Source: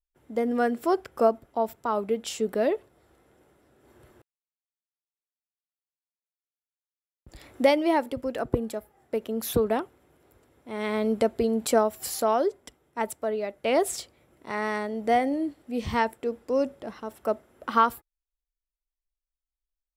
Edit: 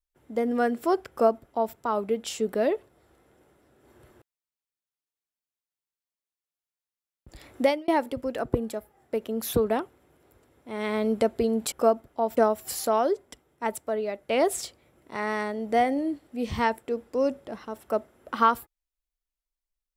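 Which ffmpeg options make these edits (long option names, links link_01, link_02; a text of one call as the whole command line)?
ffmpeg -i in.wav -filter_complex "[0:a]asplit=4[link_01][link_02][link_03][link_04];[link_01]atrim=end=7.88,asetpts=PTS-STARTPTS,afade=type=out:start_time=7.61:duration=0.27[link_05];[link_02]atrim=start=7.88:end=11.722,asetpts=PTS-STARTPTS,afade=type=in:duration=0.004:curve=hsin[link_06];[link_03]atrim=start=1.098:end=1.752[link_07];[link_04]atrim=start=11.718[link_08];[link_05][link_06]concat=n=2:v=0:a=1[link_09];[link_09][link_07]acrossfade=duration=0.004:curve1=hsin:curve2=hsin[link_10];[link_10][link_08]acrossfade=duration=0.004:curve1=hsin:curve2=hsin" out.wav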